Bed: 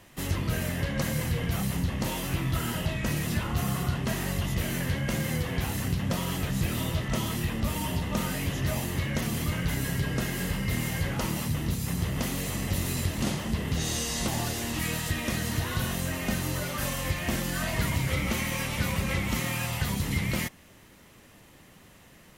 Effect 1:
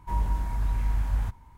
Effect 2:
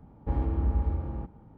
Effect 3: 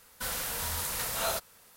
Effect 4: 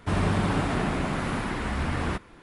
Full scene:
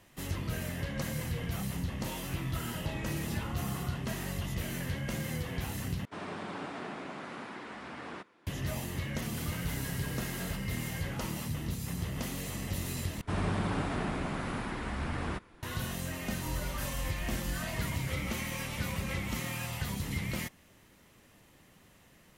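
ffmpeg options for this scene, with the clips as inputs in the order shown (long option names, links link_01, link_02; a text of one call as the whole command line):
ffmpeg -i bed.wav -i cue0.wav -i cue1.wav -i cue2.wav -i cue3.wav -filter_complex "[4:a]asplit=2[link_01][link_02];[0:a]volume=-6.5dB[link_03];[2:a]highpass=160[link_04];[link_01]highpass=250,lowpass=7200[link_05];[3:a]acompressor=threshold=-44dB:ratio=6:attack=3.2:release=140:knee=1:detection=peak[link_06];[link_03]asplit=3[link_07][link_08][link_09];[link_07]atrim=end=6.054[link_10];[link_05]atrim=end=2.42,asetpts=PTS-STARTPTS,volume=-11.5dB[link_11];[link_08]atrim=start=8.466:end=13.214[link_12];[link_02]atrim=end=2.42,asetpts=PTS-STARTPTS,volume=-7dB[link_13];[link_09]atrim=start=15.626[link_14];[link_04]atrim=end=1.57,asetpts=PTS-STARTPTS,volume=-7dB,afade=type=in:duration=0.004:curve=hsin,afade=type=out:start_time=1.566:duration=0.004:curve=hsin,adelay=2570[link_15];[link_06]atrim=end=1.76,asetpts=PTS-STARTPTS,volume=-0.5dB,afade=type=in:duration=0.004:curve=hsin,afade=type=out:start_time=1.756:duration=0.004:curve=hsin,adelay=9170[link_16];[1:a]atrim=end=1.57,asetpts=PTS-STARTPTS,volume=-12.5dB,afade=type=in:duration=0.004:curve=hsin,afade=type=out:start_time=1.566:duration=0.004:curve=hsin,adelay=16350[link_17];[link_10][link_11]acrossfade=duration=0.004:curve1=hsin:curve2=hsin[link_18];[link_18][link_12]acrossfade=duration=0.004:curve1=hsin:curve2=hsin[link_19];[link_19][link_13]acrossfade=duration=0.004:curve1=hsin:curve2=hsin[link_20];[link_20][link_14]acrossfade=duration=0.004:curve1=hsin:curve2=hsin[link_21];[link_21][link_15][link_16][link_17]amix=inputs=4:normalize=0" out.wav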